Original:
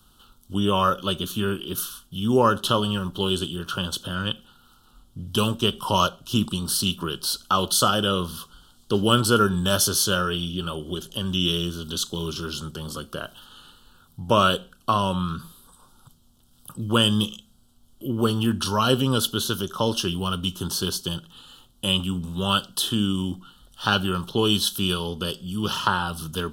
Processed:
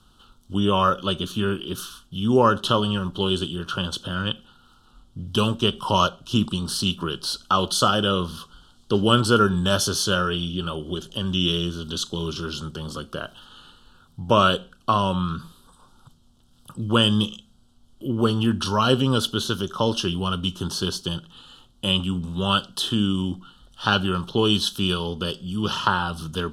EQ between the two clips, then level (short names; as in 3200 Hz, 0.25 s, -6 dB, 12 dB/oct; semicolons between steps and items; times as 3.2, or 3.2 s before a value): air absorption 55 m; +1.5 dB